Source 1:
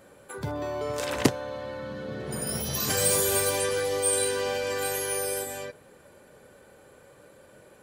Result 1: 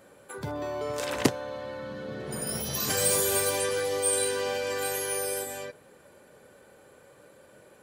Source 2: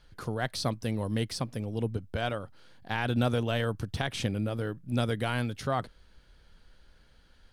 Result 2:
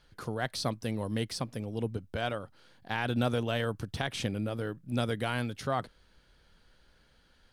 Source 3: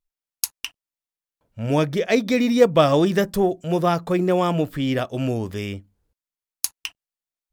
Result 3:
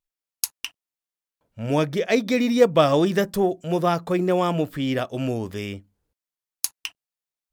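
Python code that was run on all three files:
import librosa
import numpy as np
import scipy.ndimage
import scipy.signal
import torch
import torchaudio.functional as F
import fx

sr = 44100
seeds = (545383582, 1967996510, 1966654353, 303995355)

y = fx.low_shelf(x, sr, hz=81.0, db=-7.5)
y = F.gain(torch.from_numpy(y), -1.0).numpy()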